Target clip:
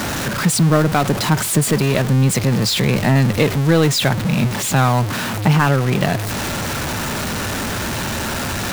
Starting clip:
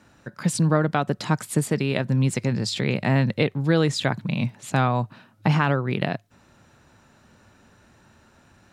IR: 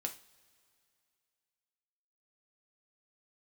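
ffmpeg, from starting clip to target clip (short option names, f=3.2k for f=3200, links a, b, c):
-af "aeval=exprs='val(0)+0.5*0.0944*sgn(val(0))':c=same,volume=3.5dB"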